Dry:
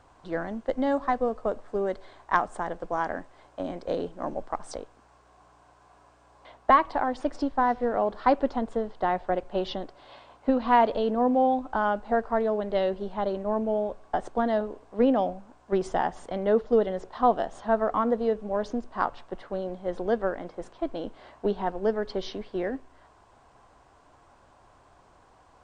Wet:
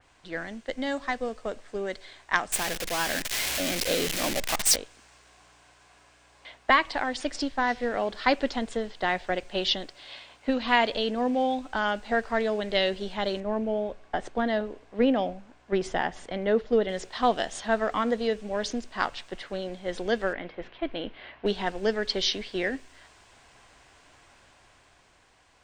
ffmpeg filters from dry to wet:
ffmpeg -i in.wav -filter_complex "[0:a]asettb=1/sr,asplit=3[link_01][link_02][link_03];[link_01]atrim=end=2.524[link_04];[link_02]atrim=start=2.52:end=4.76,asetpts=PTS-STARTPTS,afade=type=in:duration=0.004:curve=qsin,afade=type=out:start_time=2.236:duration=0.004:curve=qsin,aeval=exprs='val(0)+0.5*0.0299*sgn(val(0))':channel_layout=same[link_05];[link_03]atrim=start=4.756[link_06];[link_04][link_05]acrossfade=duration=0.004:curve1=hsin:curve2=qsin[link_07];[link_07][link_06]acrossfade=duration=0.004:curve1=qsin:curve2=hsin,asettb=1/sr,asplit=3[link_08][link_09][link_10];[link_08]atrim=end=13.404[link_11];[link_09]atrim=start=13.4:end=16.89,asetpts=PTS-STARTPTS,afade=type=in:duration=0.004:curve=qsin,afade=type=out:start_time=3.486:duration=0.004:curve=qsin,lowpass=frequency=1600:poles=1[link_12];[link_10]atrim=start=16.886[link_13];[link_11][link_12]acrossfade=duration=0.004:curve1=hsin:curve2=qsin[link_14];[link_14][link_13]acrossfade=duration=0.004:curve1=qsin:curve2=hsin,asettb=1/sr,asplit=3[link_15][link_16][link_17];[link_15]atrim=end=20.334[link_18];[link_16]atrim=start=20.33:end=21.46,asetpts=PTS-STARTPTS,afade=type=in:duration=0.004:curve=qsin,afade=type=out:start_time=1.126:duration=0.004:curve=qsin,lowpass=frequency=3200:width=0.5412,lowpass=frequency=3200:width=1.3066[link_19];[link_17]atrim=start=21.456[link_20];[link_18][link_19]acrossfade=duration=0.004:curve1=hsin:curve2=qsin[link_21];[link_21][link_20]acrossfade=duration=0.004:curve1=qsin:curve2=hsin,highshelf=frequency=1500:width_type=q:width=1.5:gain=10,dynaudnorm=framelen=140:gausssize=17:maxgain=5dB,adynamicequalizer=threshold=0.0126:dfrequency=3400:dqfactor=0.7:tfrequency=3400:tqfactor=0.7:attack=5:release=100:ratio=0.375:range=3:mode=boostabove:tftype=highshelf,volume=-5dB" out.wav

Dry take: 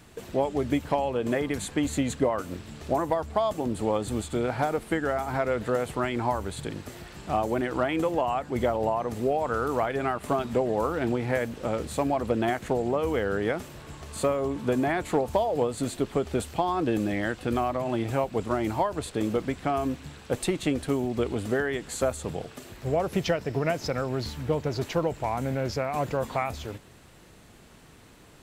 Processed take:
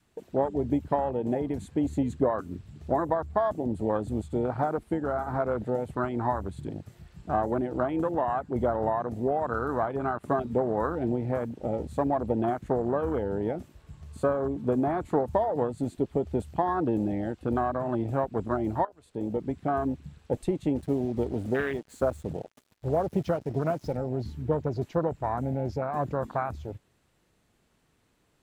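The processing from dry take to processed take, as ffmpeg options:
ffmpeg -i in.wav -filter_complex "[0:a]asettb=1/sr,asplit=3[link_01][link_02][link_03];[link_01]atrim=end=20.764[link_04];[link_02]atrim=start=20.76:end=23.97,asetpts=PTS-STARTPTS,afade=type=in:duration=0.004:curve=qsin,afade=type=out:start_time=3.206:duration=0.004:curve=qsin,acrusher=bits=5:mix=0:aa=0.5[link_05];[link_03]atrim=start=23.966[link_06];[link_04][link_05]acrossfade=duration=0.004:curve1=hsin:curve2=qsin[link_07];[link_07][link_06]acrossfade=duration=0.004:curve1=qsin:curve2=hsin,asplit=2[link_08][link_09];[link_08]atrim=end=18.85,asetpts=PTS-STARTPTS,afade=type=out:start_time=18.846:duration=0.004:curve=hsin:silence=0.223872[link_10];[link_09]atrim=start=18.85,asetpts=PTS-STARTPTS,afade=type=in:duration=0.73:silence=0.223872[link_11];[link_10][link_11]concat=n=2:v=0:a=1,afwtdn=0.0398,adynamicequalizer=threshold=0.0112:dfrequency=480:dqfactor=2.7:tfrequency=480:tqfactor=2.7:attack=5:release=100:ratio=0.375:range=2:mode=cutabove:tftype=bell" out.wav

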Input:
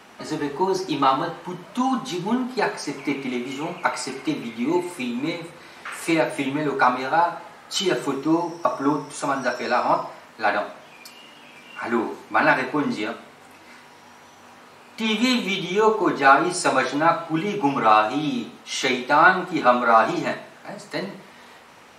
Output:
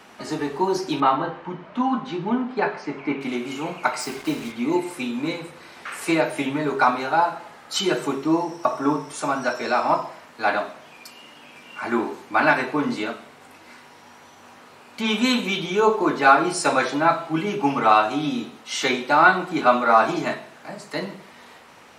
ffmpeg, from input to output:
ffmpeg -i in.wav -filter_complex "[0:a]asettb=1/sr,asplit=3[link_01][link_02][link_03];[link_01]atrim=end=1.004[link_04];[link_02]atrim=start=1:end=3.21,asetpts=PTS-STARTPTS,afade=type=in:duration=0.004:curve=qsin,afade=type=out:start_time=2.206:duration=0.004:curve=qsin,lowpass=2600[link_05];[link_03]atrim=start=3.206[link_06];[link_04][link_05]acrossfade=duration=0.004:curve1=hsin:curve2=qsin[link_07];[link_07][link_06]acrossfade=duration=0.004:curve1=qsin:curve2=hsin,asplit=3[link_08][link_09][link_10];[link_08]afade=type=out:start_time=3.99:duration=0.02[link_11];[link_09]acrusher=bits=5:mix=0:aa=0.5,afade=type=in:start_time=3.99:duration=0.02,afade=type=out:start_time=4.51:duration=0.02[link_12];[link_10]afade=type=in:start_time=4.51:duration=0.02[link_13];[link_11][link_12][link_13]amix=inputs=3:normalize=0" out.wav

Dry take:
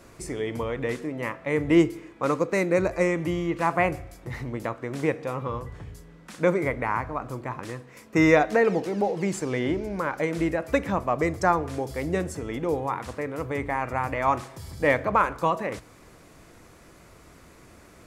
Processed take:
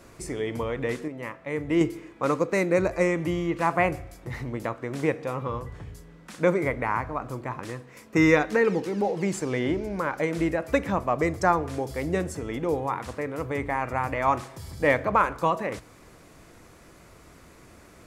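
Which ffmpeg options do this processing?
ffmpeg -i in.wav -filter_complex "[0:a]asettb=1/sr,asplit=3[link_01][link_02][link_03];[link_01]atrim=end=8.174[link_04];[link_02]atrim=start=8.17:end=9.05,asetpts=PTS-STARTPTS,afade=type=in:duration=0.004:curve=qsin,afade=type=out:start_time=0.876:duration=0.004:curve=qsin,equalizer=frequency=670:width=5.9:gain=-14[link_05];[link_03]atrim=start=9.046[link_06];[link_04][link_05]acrossfade=duration=0.004:curve1=hsin:curve2=qsin[link_07];[link_07][link_06]acrossfade=duration=0.004:curve1=qsin:curve2=hsin,asplit=3[link_08][link_09][link_10];[link_08]atrim=end=1.082[link_11];[link_09]atrim=start=1.078:end=1.812,asetpts=PTS-STARTPTS,volume=-5dB[link_12];[link_10]atrim=start=1.808[link_13];[link_11][link_12]acrossfade=duration=0.004:curve1=hsin:curve2=hsin[link_14];[link_14][link_13]acrossfade=duration=0.004:curve1=hsin:curve2=hsin" out.wav

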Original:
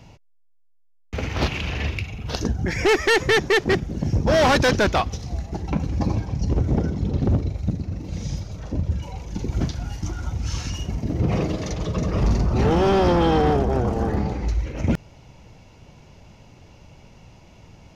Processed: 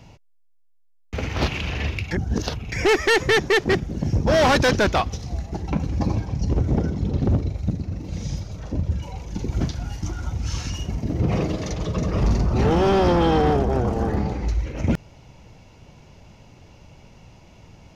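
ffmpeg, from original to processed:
ffmpeg -i in.wav -filter_complex "[0:a]asplit=3[link_01][link_02][link_03];[link_01]atrim=end=2.112[link_04];[link_02]atrim=start=2.108:end=2.722,asetpts=PTS-STARTPTS,areverse[link_05];[link_03]atrim=start=2.718[link_06];[link_04][link_05]acrossfade=duration=0.004:curve1=hsin:curve2=hsin[link_07];[link_07][link_06]acrossfade=duration=0.004:curve1=hsin:curve2=hsin" out.wav

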